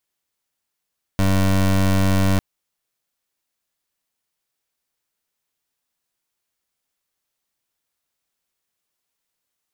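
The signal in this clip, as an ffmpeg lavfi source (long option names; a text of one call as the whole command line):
ffmpeg -f lavfi -i "aevalsrc='0.15*(2*lt(mod(96*t,1),0.23)-1)':duration=1.2:sample_rate=44100" out.wav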